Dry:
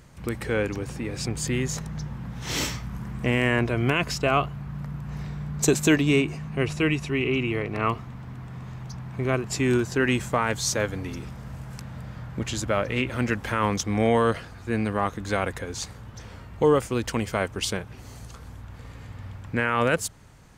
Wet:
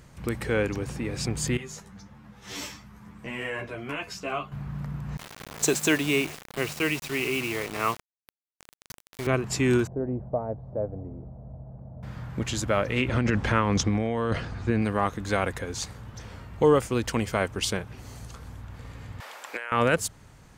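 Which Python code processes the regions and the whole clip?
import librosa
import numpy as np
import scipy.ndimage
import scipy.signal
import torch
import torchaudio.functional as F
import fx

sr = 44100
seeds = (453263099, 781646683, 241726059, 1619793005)

y = fx.chain(x, sr, fx.low_shelf(hz=170.0, db=-6.5),
    fx.comb_fb(f0_hz=98.0, decay_s=0.17, harmonics='all', damping=0.0, mix_pct=80),
    fx.ensemble(), at=(1.57, 4.52))
y = fx.chain(y, sr, fx.highpass(hz=73.0, slope=24),
    fx.low_shelf(hz=270.0, db=-11.5),
    fx.quant_dither(seeds[0], bits=6, dither='none'), at=(5.17, 9.27))
y = fx.chain(y, sr, fx.ladder_lowpass(hz=720.0, resonance_pct=65),
    fx.low_shelf(hz=210.0, db=8.5), at=(9.87, 12.03))
y = fx.chain(y, sr, fx.lowpass(hz=6300.0, slope=12),
    fx.low_shelf(hz=380.0, db=5.0),
    fx.over_compress(threshold_db=-24.0, ratio=-1.0), at=(13.08, 14.82))
y = fx.chain(y, sr, fx.highpass(hz=500.0, slope=24),
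    fx.high_shelf(hz=3600.0, db=7.0),
    fx.over_compress(threshold_db=-35.0, ratio=-1.0), at=(19.2, 19.72))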